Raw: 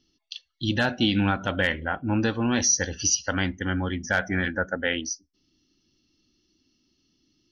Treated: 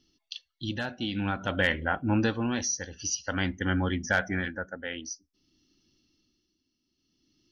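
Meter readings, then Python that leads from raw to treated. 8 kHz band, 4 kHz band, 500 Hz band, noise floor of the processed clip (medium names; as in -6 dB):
no reading, -6.5 dB, -4.0 dB, -80 dBFS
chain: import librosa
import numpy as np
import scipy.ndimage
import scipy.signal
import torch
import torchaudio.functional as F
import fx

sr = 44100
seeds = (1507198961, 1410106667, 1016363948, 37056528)

y = x * (1.0 - 0.7 / 2.0 + 0.7 / 2.0 * np.cos(2.0 * np.pi * 0.52 * (np.arange(len(x)) / sr)))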